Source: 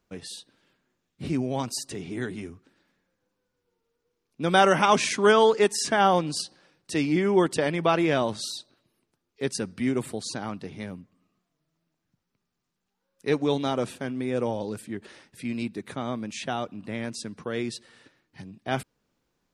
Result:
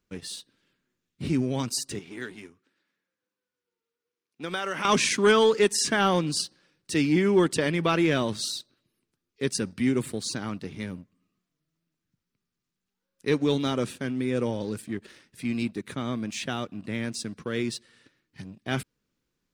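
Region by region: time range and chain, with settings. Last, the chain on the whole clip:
1.99–4.85 HPF 660 Hz 6 dB/oct + high shelf 4000 Hz -6.5 dB + compressor 2.5:1, threshold -28 dBFS
whole clip: bell 750 Hz -9.5 dB 1 oct; sample leveller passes 1; gain -1 dB

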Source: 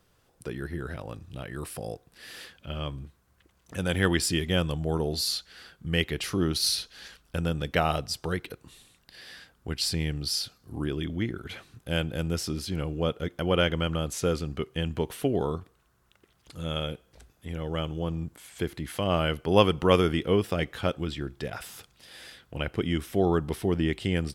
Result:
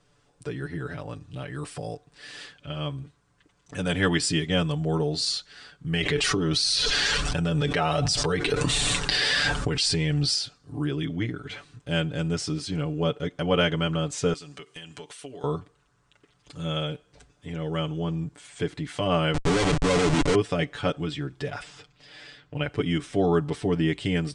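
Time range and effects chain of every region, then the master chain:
5.93–10.34 flange 1.4 Hz, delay 1.1 ms, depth 1.7 ms, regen +55% + fast leveller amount 100%
14.33–15.44 tilt +3.5 dB/oct + compressor 4:1, threshold -41 dBFS
19.34–20.35 tone controls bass -2 dB, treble +5 dB + notch 860 Hz, Q 18 + Schmitt trigger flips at -34 dBFS
21.62–22.63 air absorption 86 m + comb 6.5 ms, depth 30%
whole clip: steep low-pass 9300 Hz 72 dB/oct; comb 6.9 ms, depth 80%

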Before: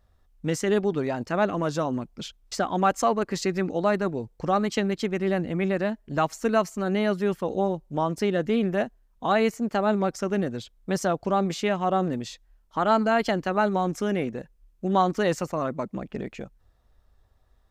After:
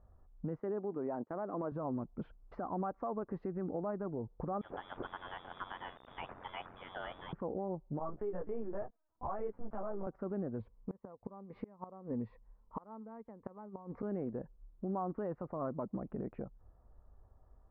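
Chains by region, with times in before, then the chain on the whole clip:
0.6–1.72 HPF 230 Hz + expander -34 dBFS + high shelf 5100 Hz -8.5 dB
4.61–7.33 zero-crossing step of -29.5 dBFS + inverted band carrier 3600 Hz + ring modulator 45 Hz
7.99–10.07 HPF 430 Hz 6 dB/oct + LPC vocoder at 8 kHz pitch kept + ensemble effect
10.59–14.03 ripple EQ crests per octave 0.92, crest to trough 9 dB + flipped gate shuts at -16 dBFS, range -29 dB
whole clip: LPF 1200 Hz 24 dB/oct; compressor 4:1, threshold -35 dBFS; limiter -30.5 dBFS; gain +1 dB

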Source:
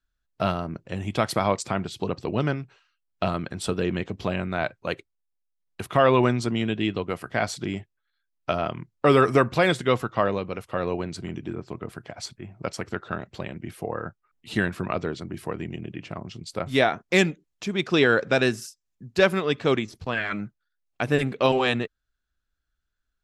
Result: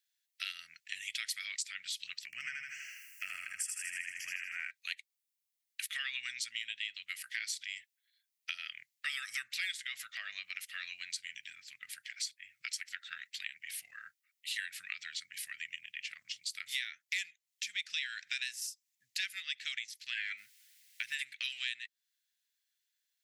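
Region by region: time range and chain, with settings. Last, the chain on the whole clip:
2.25–4.71 upward compressor, threshold -27 dBFS + Butterworth band-stop 3800 Hz, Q 1.1 + feedback echo 79 ms, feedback 58%, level -3.5 dB
9.71–10.66 bell 770 Hz +14.5 dB 1 oct + compressor 2:1, threshold -22 dBFS
20.37–21.12 G.711 law mismatch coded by mu + LPF 3400 Hz 6 dB/oct + added noise pink -67 dBFS
whole clip: elliptic high-pass 1900 Hz, stop band 50 dB; high shelf 7800 Hz +7.5 dB; compressor 4:1, threshold -41 dBFS; gain +4.5 dB

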